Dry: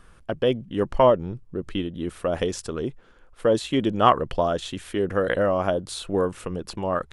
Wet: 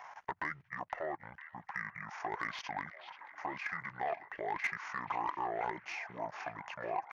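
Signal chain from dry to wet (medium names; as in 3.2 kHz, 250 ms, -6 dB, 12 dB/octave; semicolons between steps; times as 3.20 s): FFT filter 110 Hz 0 dB, 270 Hz +7 dB, 400 Hz -9 dB, 1.4 kHz +9 dB, 3.5 kHz +3 dB, 6.1 kHz -14 dB; pitch shift -8.5 st; compression 4:1, threshold -23 dBFS, peak gain reduction 14 dB; peak limiter -21 dBFS, peak gain reduction 9.5 dB; level held to a coarse grid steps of 17 dB; differentiator; overdrive pedal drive 15 dB, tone 1.5 kHz, clips at -36 dBFS; repeats whose band climbs or falls 483 ms, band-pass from 2.9 kHz, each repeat -0.7 oct, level -10.5 dB; tape noise reduction on one side only encoder only; trim +15 dB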